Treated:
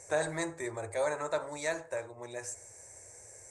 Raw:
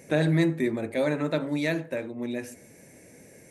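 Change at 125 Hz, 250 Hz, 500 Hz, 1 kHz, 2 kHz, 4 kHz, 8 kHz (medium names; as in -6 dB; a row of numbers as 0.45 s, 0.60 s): -18.0 dB, -17.0 dB, -5.0 dB, +0.5 dB, -5.0 dB, -7.0 dB, +7.0 dB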